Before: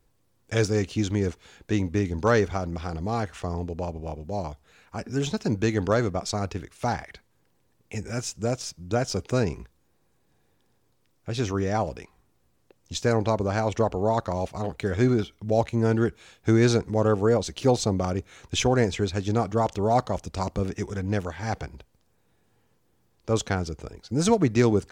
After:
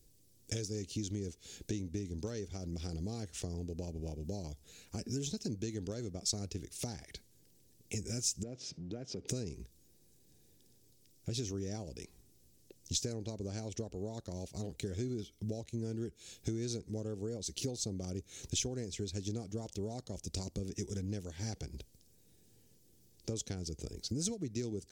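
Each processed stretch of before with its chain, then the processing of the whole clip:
0:08.43–0:09.28: mu-law and A-law mismatch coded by mu + band-pass filter 140–2,200 Hz + downward compressor 2 to 1, threshold −46 dBFS
whole clip: downward compressor 10 to 1, threshold −36 dBFS; drawn EQ curve 380 Hz 0 dB, 1,100 Hz −18 dB, 5,600 Hz +8 dB; level +1 dB

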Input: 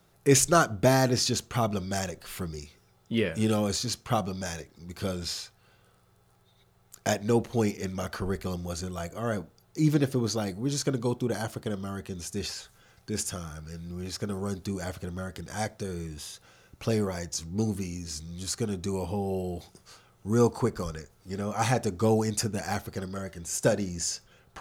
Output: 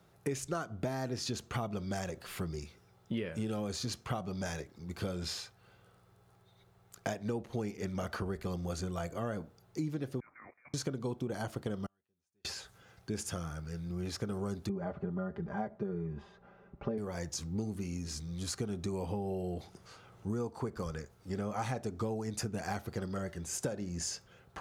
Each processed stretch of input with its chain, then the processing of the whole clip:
0:10.20–0:10.74: high-pass filter 1,400 Hz + voice inversion scrambler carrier 2,600 Hz + output level in coarse steps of 13 dB
0:11.86–0:12.45: low-shelf EQ 380 Hz −8.5 dB + gate with flip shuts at −39 dBFS, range −40 dB + one half of a high-frequency compander decoder only
0:14.69–0:16.98: low-pass filter 1,200 Hz + comb filter 5 ms, depth 95%
0:19.54–0:20.30: high-shelf EQ 9,800 Hz −6.5 dB + upward compression, threshold −48 dBFS
whole clip: high-shelf EQ 3,400 Hz −7 dB; downward compressor 16 to 1, threshold −32 dBFS; high-pass filter 49 Hz

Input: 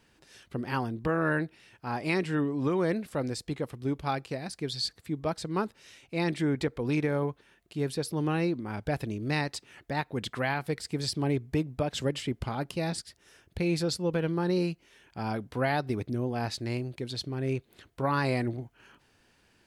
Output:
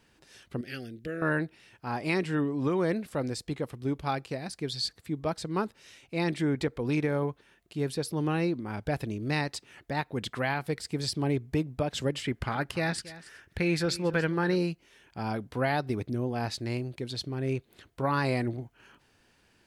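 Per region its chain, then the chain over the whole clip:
0:00.61–0:01.22: Butterworth band-reject 970 Hz, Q 0.73 + low-shelf EQ 380 Hz −11 dB
0:12.24–0:14.56: parametric band 1,700 Hz +10.5 dB 1 octave + single-tap delay 280 ms −17.5 dB
whole clip: no processing

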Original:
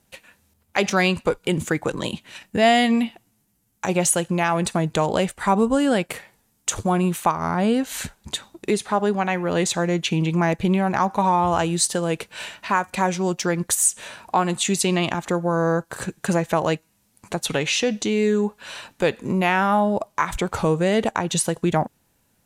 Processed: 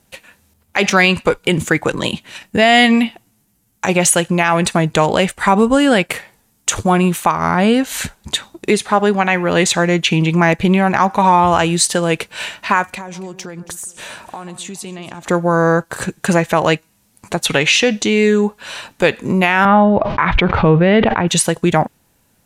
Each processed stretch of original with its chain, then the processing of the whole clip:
0:12.90–0:15.25: downward compressor 8 to 1, threshold −33 dBFS + delay that swaps between a low-pass and a high-pass 139 ms, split 1,400 Hz, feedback 56%, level −13 dB
0:19.65–0:21.28: Bessel low-pass filter 2,500 Hz, order 6 + low-shelf EQ 150 Hz +9 dB + level that may fall only so fast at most 51 dB per second
whole clip: dynamic equaliser 2,200 Hz, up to +6 dB, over −35 dBFS, Q 0.87; boost into a limiter +7.5 dB; level −1 dB

